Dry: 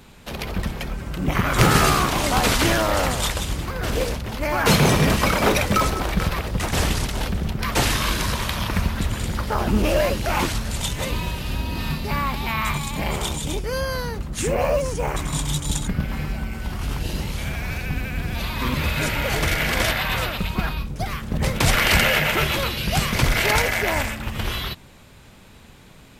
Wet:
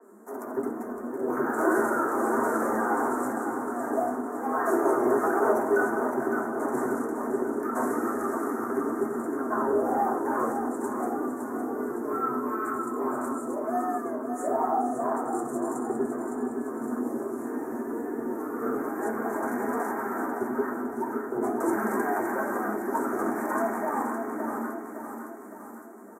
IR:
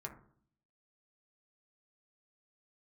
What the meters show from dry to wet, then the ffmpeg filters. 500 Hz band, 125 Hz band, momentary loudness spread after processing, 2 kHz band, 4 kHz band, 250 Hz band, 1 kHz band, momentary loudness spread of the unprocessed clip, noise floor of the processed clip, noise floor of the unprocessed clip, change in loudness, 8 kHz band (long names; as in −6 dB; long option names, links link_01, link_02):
−1.5 dB, −26.0 dB, 8 LU, −11.0 dB, below −40 dB, −2.0 dB, −2.5 dB, 10 LU, −39 dBFS, −47 dBFS, −6.5 dB, −16.5 dB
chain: -filter_complex "[0:a]afreqshift=200,asplit=2[link_01][link_02];[link_02]alimiter=limit=-11.5dB:level=0:latency=1,volume=1dB[link_03];[link_01][link_03]amix=inputs=2:normalize=0,flanger=delay=4.4:depth=4.2:regen=42:speed=1.1:shape=triangular,acrossover=split=320[link_04][link_05];[link_04]asoftclip=type=tanh:threshold=-26dB[link_06];[link_06][link_05]amix=inputs=2:normalize=0,asuperstop=centerf=3400:order=8:qfactor=0.6,aecho=1:1:561|1122|1683|2244|2805|3366:0.422|0.219|0.114|0.0593|0.0308|0.016[link_07];[1:a]atrim=start_sample=2205[link_08];[link_07][link_08]afir=irnorm=-1:irlink=0,adynamicequalizer=threshold=0.00501:dfrequency=3900:dqfactor=0.7:tfrequency=3900:tqfactor=0.7:attack=5:release=100:ratio=0.375:range=3.5:mode=cutabove:tftype=highshelf,volume=-4.5dB"